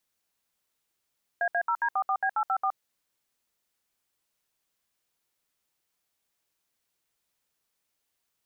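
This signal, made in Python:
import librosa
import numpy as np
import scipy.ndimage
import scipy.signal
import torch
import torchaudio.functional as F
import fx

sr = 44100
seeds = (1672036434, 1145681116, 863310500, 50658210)

y = fx.dtmf(sr, digits='AA0D44B854', tone_ms=69, gap_ms=67, level_db=-26.0)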